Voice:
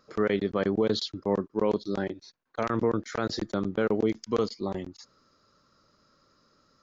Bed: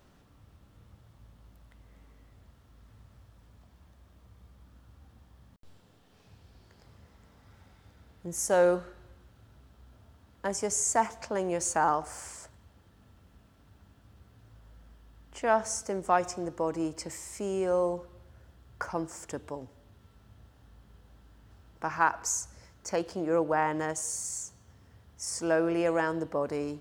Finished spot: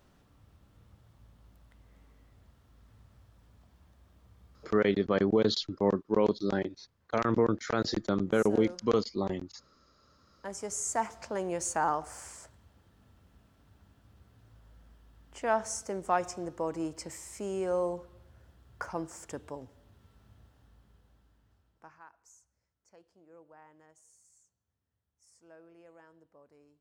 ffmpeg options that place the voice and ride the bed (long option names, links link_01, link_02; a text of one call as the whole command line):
ffmpeg -i stem1.wav -i stem2.wav -filter_complex "[0:a]adelay=4550,volume=0dB[link_01];[1:a]volume=12.5dB,afade=type=out:start_time=4.53:duration=0.32:silence=0.16788,afade=type=in:start_time=9.85:duration=1.44:silence=0.16788,afade=type=out:start_time=20.28:duration=1.74:silence=0.0501187[link_02];[link_01][link_02]amix=inputs=2:normalize=0" out.wav